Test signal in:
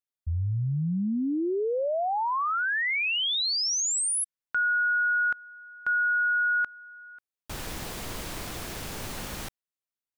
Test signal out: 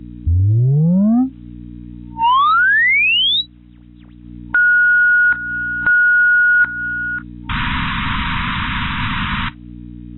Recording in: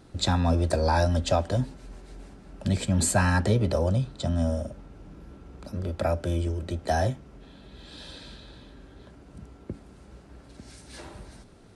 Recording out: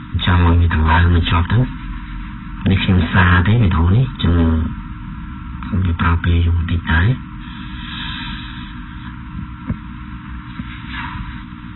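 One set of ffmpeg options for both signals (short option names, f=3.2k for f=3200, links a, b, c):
-filter_complex "[0:a]aemphasis=mode=reproduction:type=bsi,afftfilt=real='re*(1-between(b*sr/4096,260,910))':imag='im*(1-between(b*sr/4096,260,910))':win_size=4096:overlap=0.75,adynamicequalizer=threshold=0.00398:dfrequency=1200:dqfactor=7.8:tfrequency=1200:tqfactor=7.8:attack=5:release=100:ratio=0.45:range=2.5:mode=cutabove:tftype=bell,acontrast=34,aeval=exprs='val(0)+0.0112*(sin(2*PI*60*n/s)+sin(2*PI*2*60*n/s)/2+sin(2*PI*3*60*n/s)/3+sin(2*PI*4*60*n/s)/4+sin(2*PI*5*60*n/s)/5)':c=same,acompressor=mode=upward:threshold=-30dB:ratio=2.5:attack=47:release=264:knee=2.83:detection=peak,asplit=2[a][b];[b]highpass=f=720:p=1,volume=27dB,asoftclip=type=tanh:threshold=-2.5dB[c];[a][c]amix=inputs=2:normalize=0,lowpass=f=3.6k:p=1,volume=-6dB,acrusher=bits=8:mix=0:aa=0.000001,volume=-2.5dB" -ar 22050 -c:a aac -b:a 16k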